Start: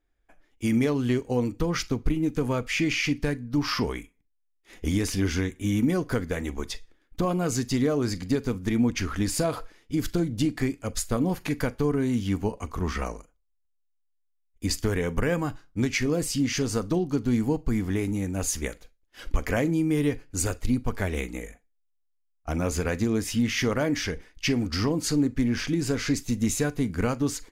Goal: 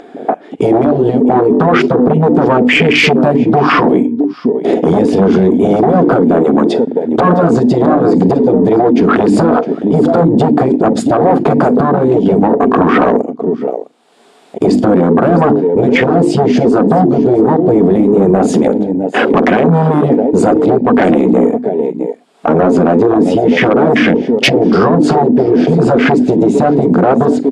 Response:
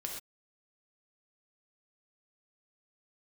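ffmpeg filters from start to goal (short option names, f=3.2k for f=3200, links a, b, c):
-filter_complex "[0:a]highshelf=f=2.2k:g=-12,asplit=2[a][b];[b]aeval=exprs='0.0891*(abs(mod(val(0)/0.0891+3,4)-2)-1)':c=same,volume=-6dB[c];[a][c]amix=inputs=2:normalize=0,highpass=f=190:w=0.5412,highpass=f=190:w=1.3066,equalizer=f=240:t=q:w=4:g=8,equalizer=f=420:t=q:w=4:g=10,equalizer=f=720:t=q:w=4:g=10,equalizer=f=2k:t=q:w=4:g=-3,equalizer=f=3.5k:t=q:w=4:g=4,equalizer=f=6.1k:t=q:w=4:g=-8,lowpass=f=8.8k:w=0.5412,lowpass=f=8.8k:w=1.3066,acompressor=mode=upward:threshold=-30dB:ratio=2.5,bandreject=f=50:t=h:w=6,bandreject=f=100:t=h:w=6,bandreject=f=150:t=h:w=6,bandreject=f=200:t=h:w=6,bandreject=f=250:t=h:w=6,bandreject=f=300:t=h:w=6,bandreject=f=350:t=h:w=6,acompressor=threshold=-25dB:ratio=4,asplit=2[d][e];[e]aecho=0:1:658:0.15[f];[d][f]amix=inputs=2:normalize=0,afftfilt=real='re*lt(hypot(re,im),0.224)':imag='im*lt(hypot(re,im),0.224)':win_size=1024:overlap=0.75,afwtdn=0.0112,asoftclip=type=tanh:threshold=-25.5dB,alimiter=level_in=32.5dB:limit=-1dB:release=50:level=0:latency=1,volume=-1dB"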